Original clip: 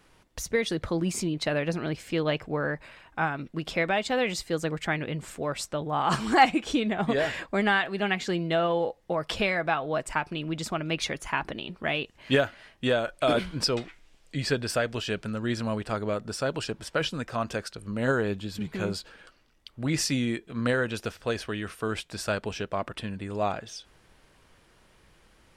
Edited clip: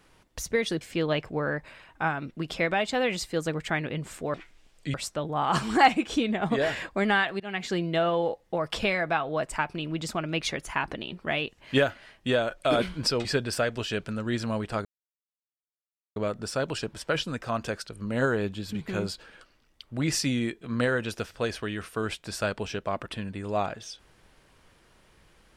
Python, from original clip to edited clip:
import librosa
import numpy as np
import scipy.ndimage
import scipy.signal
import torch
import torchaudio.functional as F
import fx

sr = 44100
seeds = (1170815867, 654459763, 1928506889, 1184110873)

y = fx.edit(x, sr, fx.cut(start_s=0.81, length_s=1.17),
    fx.fade_in_from(start_s=7.97, length_s=0.29, floor_db=-20.5),
    fx.move(start_s=13.82, length_s=0.6, to_s=5.51),
    fx.insert_silence(at_s=16.02, length_s=1.31), tone=tone)